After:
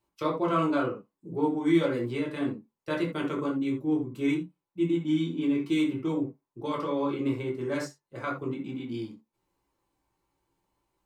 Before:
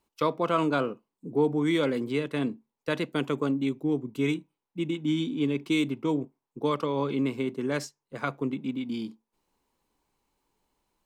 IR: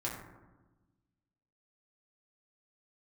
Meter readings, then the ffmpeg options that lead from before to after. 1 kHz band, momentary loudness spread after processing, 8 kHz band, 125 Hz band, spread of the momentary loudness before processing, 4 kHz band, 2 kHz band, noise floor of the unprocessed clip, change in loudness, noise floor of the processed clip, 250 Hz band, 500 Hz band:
−1.0 dB, 11 LU, can't be measured, −1.5 dB, 9 LU, −4.5 dB, −2.5 dB, below −85 dBFS, −0.5 dB, below −85 dBFS, +0.5 dB, −1.5 dB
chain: -filter_complex "[1:a]atrim=start_sample=2205,atrim=end_sample=3969[link_01];[0:a][link_01]afir=irnorm=-1:irlink=0,volume=-3.5dB"

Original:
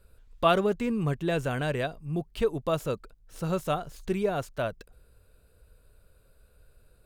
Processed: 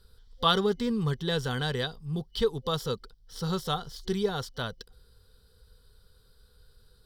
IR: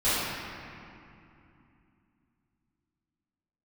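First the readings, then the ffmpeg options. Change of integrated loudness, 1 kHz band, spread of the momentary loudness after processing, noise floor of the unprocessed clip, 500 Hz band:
−0.5 dB, −1.5 dB, 11 LU, −61 dBFS, −2.5 dB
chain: -af "superequalizer=6b=0.398:8b=0.282:12b=0.398:13b=3.16:14b=3.98"

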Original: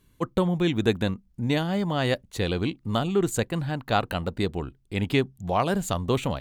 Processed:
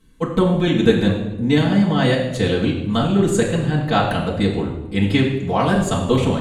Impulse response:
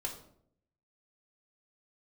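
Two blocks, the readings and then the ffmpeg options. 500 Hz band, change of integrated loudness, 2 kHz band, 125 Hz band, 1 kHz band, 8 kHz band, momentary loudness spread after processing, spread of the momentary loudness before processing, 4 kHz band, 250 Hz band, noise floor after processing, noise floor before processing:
+7.5 dB, +8.0 dB, +7.0 dB, +8.5 dB, +6.0 dB, +5.0 dB, 5 LU, 6 LU, +6.5 dB, +9.5 dB, −30 dBFS, −63 dBFS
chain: -filter_complex "[1:a]atrim=start_sample=2205,asetrate=22491,aresample=44100[link_01];[0:a][link_01]afir=irnorm=-1:irlink=0,volume=1dB"

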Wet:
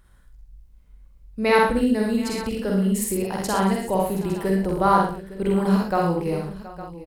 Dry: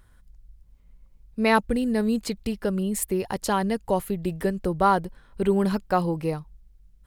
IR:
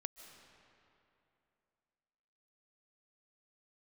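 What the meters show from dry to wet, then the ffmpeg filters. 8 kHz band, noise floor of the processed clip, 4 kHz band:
+2.5 dB, −52 dBFS, +2.5 dB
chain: -filter_complex "[0:a]asplit=2[link_01][link_02];[link_02]adelay=47,volume=-2.5dB[link_03];[link_01][link_03]amix=inputs=2:normalize=0,aecho=1:1:63|83|180|723|859:0.631|0.447|0.141|0.133|0.178,volume=-1.5dB"

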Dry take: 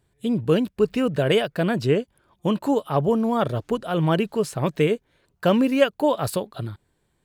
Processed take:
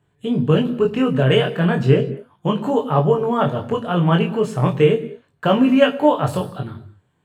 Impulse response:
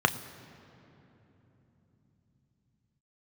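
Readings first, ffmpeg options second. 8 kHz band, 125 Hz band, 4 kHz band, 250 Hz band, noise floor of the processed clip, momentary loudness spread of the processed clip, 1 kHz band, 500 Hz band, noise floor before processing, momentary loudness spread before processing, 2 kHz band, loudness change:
can't be measured, +7.5 dB, +3.5 dB, +4.0 dB, −65 dBFS, 10 LU, +5.5 dB, +4.0 dB, −71 dBFS, 8 LU, +4.0 dB, +4.5 dB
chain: -filter_complex "[0:a]flanger=delay=19.5:depth=3.9:speed=0.35[link_01];[1:a]atrim=start_sample=2205,afade=type=out:start_time=0.29:duration=0.01,atrim=end_sample=13230[link_02];[link_01][link_02]afir=irnorm=-1:irlink=0,volume=-6.5dB"

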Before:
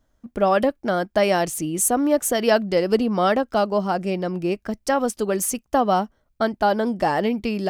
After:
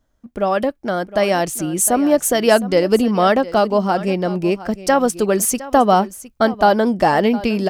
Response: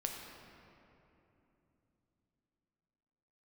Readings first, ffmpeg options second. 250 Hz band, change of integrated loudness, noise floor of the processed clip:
+5.0 dB, +4.5 dB, −62 dBFS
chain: -af "aecho=1:1:711:0.141,dynaudnorm=framelen=560:gausssize=5:maxgain=11.5dB"

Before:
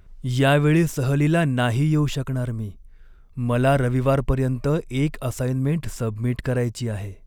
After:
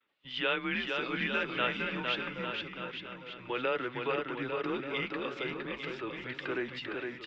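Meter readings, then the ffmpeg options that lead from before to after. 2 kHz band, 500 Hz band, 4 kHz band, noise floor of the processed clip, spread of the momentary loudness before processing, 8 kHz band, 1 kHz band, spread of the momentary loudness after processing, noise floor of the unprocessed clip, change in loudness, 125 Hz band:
−3.5 dB, −11.5 dB, −1.5 dB, −48 dBFS, 10 LU, below −25 dB, −8.0 dB, 8 LU, −48 dBFS, −12.0 dB, −27.0 dB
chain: -filter_complex "[0:a]agate=range=-33dB:threshold=-44dB:ratio=3:detection=peak,equalizer=frequency=1000:width=3.1:gain=-3,alimiter=limit=-12dB:level=0:latency=1:release=162,crystalizer=i=9.5:c=0,flanger=delay=3.5:depth=4.8:regen=-61:speed=0.49:shape=triangular,asplit=2[link_01][link_02];[link_02]aecho=0:1:460|851|1183|1466|1706:0.631|0.398|0.251|0.158|0.1[link_03];[link_01][link_03]amix=inputs=2:normalize=0,highpass=frequency=370:width_type=q:width=0.5412,highpass=frequency=370:width_type=q:width=1.307,lowpass=frequency=3500:width_type=q:width=0.5176,lowpass=frequency=3500:width_type=q:width=0.7071,lowpass=frequency=3500:width_type=q:width=1.932,afreqshift=-120,volume=-7dB"

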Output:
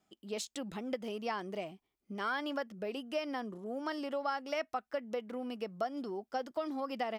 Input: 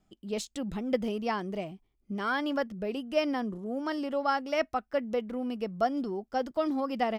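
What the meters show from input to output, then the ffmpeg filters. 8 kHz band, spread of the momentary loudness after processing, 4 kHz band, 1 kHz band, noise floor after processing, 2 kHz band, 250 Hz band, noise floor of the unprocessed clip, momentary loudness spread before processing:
can't be measured, 5 LU, −4.0 dB, −6.0 dB, −85 dBFS, −5.0 dB, −8.5 dB, −75 dBFS, 6 LU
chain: -af "acompressor=threshold=-30dB:ratio=6,highpass=frequency=440:poles=1"

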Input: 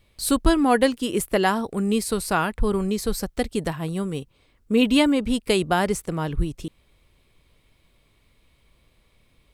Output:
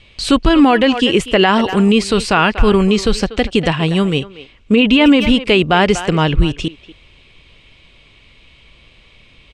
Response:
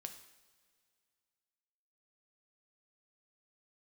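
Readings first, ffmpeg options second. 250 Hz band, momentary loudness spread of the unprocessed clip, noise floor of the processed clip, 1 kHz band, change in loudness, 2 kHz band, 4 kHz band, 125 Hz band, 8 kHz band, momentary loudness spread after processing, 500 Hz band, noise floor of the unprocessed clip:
+9.5 dB, 10 LU, −48 dBFS, +8.5 dB, +9.5 dB, +11.0 dB, +12.5 dB, +11.0 dB, +1.5 dB, 8 LU, +8.5 dB, −63 dBFS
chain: -filter_complex "[0:a]lowpass=frequency=7200:width=0.5412,lowpass=frequency=7200:width=1.3066,equalizer=frequency=2800:width=1.8:gain=11.5,asplit=2[link_01][link_02];[link_02]adelay=240,highpass=300,lowpass=3400,asoftclip=type=hard:threshold=-8.5dB,volume=-16dB[link_03];[link_01][link_03]amix=inputs=2:normalize=0,acrossover=split=2600[link_04][link_05];[link_05]acompressor=threshold=-32dB:ratio=4:attack=1:release=60[link_06];[link_04][link_06]amix=inputs=2:normalize=0,alimiter=level_in=13dB:limit=-1dB:release=50:level=0:latency=1,volume=-1dB"

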